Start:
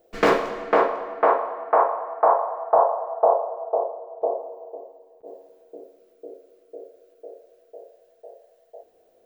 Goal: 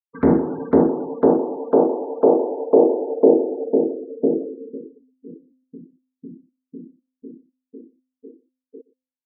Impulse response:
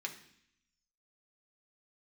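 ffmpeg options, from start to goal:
-filter_complex "[0:a]highpass=f=360:t=q:w=0.5412,highpass=f=360:t=q:w=1.307,lowpass=f=2300:t=q:w=0.5176,lowpass=f=2300:t=q:w=0.7071,lowpass=f=2300:t=q:w=1.932,afreqshift=-210,afftfilt=real='re*gte(hypot(re,im),0.0355)':imag='im*gte(hypot(re,im),0.0355)':win_size=1024:overlap=0.75,adynamicequalizer=threshold=0.0224:dfrequency=350:dqfactor=1.6:tfrequency=350:tqfactor=1.6:attack=5:release=100:ratio=0.375:range=3:mode=boostabove:tftype=bell,acrossover=split=640[s0][s1];[s1]acompressor=threshold=0.01:ratio=6[s2];[s0][s2]amix=inputs=2:normalize=0,bandreject=f=257.6:t=h:w=4,bandreject=f=515.2:t=h:w=4,bandreject=f=772.8:t=h:w=4,bandreject=f=1030.4:t=h:w=4,bandreject=f=1288:t=h:w=4,bandreject=f=1545.6:t=h:w=4,bandreject=f=1803.2:t=h:w=4,bandreject=f=2060.8:t=h:w=4,bandreject=f=2318.4:t=h:w=4,bandreject=f=2576:t=h:w=4,bandreject=f=2833.6:t=h:w=4,asplit=2[s3][s4];[s4]aecho=0:1:119:0.0794[s5];[s3][s5]amix=inputs=2:normalize=0,volume=1.5"

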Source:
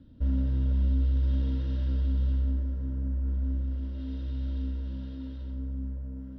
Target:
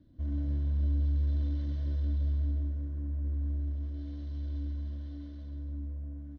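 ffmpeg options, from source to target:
-af "asetrate=48091,aresample=44100,atempo=0.917004,aecho=1:1:128.3|279.9:0.562|0.282,volume=0.422"

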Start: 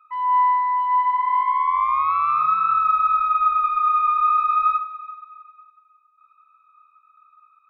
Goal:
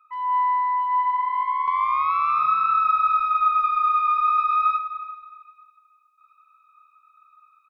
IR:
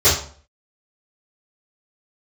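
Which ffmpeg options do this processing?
-filter_complex "[0:a]asetnsamples=n=441:p=0,asendcmd='1.68 highshelf g 11.5',highshelf=f=2100:g=4,asplit=2[s0][s1];[s1]adelay=265,lowpass=f=2000:p=1,volume=0.224,asplit=2[s2][s3];[s3]adelay=265,lowpass=f=2000:p=1,volume=0.3,asplit=2[s4][s5];[s5]adelay=265,lowpass=f=2000:p=1,volume=0.3[s6];[s0][s2][s4][s6]amix=inputs=4:normalize=0,volume=0.596"

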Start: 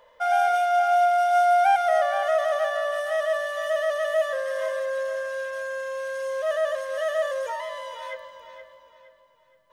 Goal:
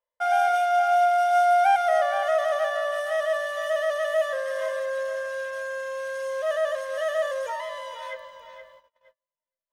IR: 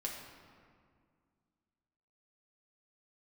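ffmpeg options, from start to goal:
-af "agate=range=0.0178:threshold=0.00316:ratio=16:detection=peak,equalizer=f=330:t=o:w=0.46:g=-9"

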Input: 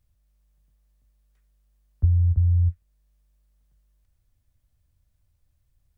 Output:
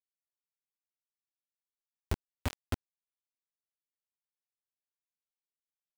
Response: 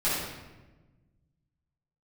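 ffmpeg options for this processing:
-filter_complex "[0:a]aeval=exprs='val(0)+0.5*0.0237*sgn(val(0))':c=same,asplit=3[s0][s1][s2];[s0]afade=t=out:st=2.16:d=0.02[s3];[s1]highpass=130,afade=t=in:st=2.16:d=0.02,afade=t=out:st=2.63:d=0.02[s4];[s2]afade=t=in:st=2.63:d=0.02[s5];[s3][s4][s5]amix=inputs=3:normalize=0,aecho=1:1:2.8:0.43,acrossover=split=310[s6][s7];[s6]adelay=80[s8];[s8][s7]amix=inputs=2:normalize=0,acompressor=threshold=0.0398:ratio=3,agate=range=0.0224:threshold=0.0282:ratio=3:detection=peak,bass=f=250:g=-7,treble=f=4000:g=-7,asplit=2[s9][s10];[1:a]atrim=start_sample=2205[s11];[s10][s11]afir=irnorm=-1:irlink=0,volume=0.1[s12];[s9][s12]amix=inputs=2:normalize=0,acrusher=bits=4:mix=0:aa=0.000001,acompressor=mode=upward:threshold=0.0224:ratio=2.5"

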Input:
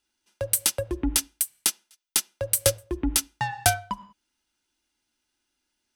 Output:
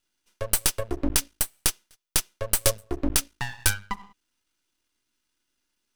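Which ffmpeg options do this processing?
-af "asuperstop=centerf=710:order=8:qfactor=2.2,aeval=exprs='max(val(0),0)':c=same,volume=1.58"

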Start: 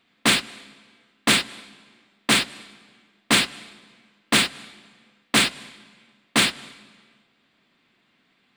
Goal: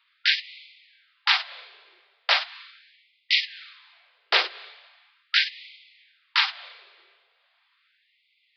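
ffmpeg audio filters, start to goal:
-af "aeval=exprs='0.501*(cos(1*acos(clip(val(0)/0.501,-1,1)))-cos(1*PI/2))+0.141*(cos(7*acos(clip(val(0)/0.501,-1,1)))-cos(7*PI/2))':c=same,aresample=11025,aresample=44100,afftfilt=real='re*gte(b*sr/1024,340*pow(2000/340,0.5+0.5*sin(2*PI*0.39*pts/sr)))':imag='im*gte(b*sr/1024,340*pow(2000/340,0.5+0.5*sin(2*PI*0.39*pts/sr)))':win_size=1024:overlap=0.75"

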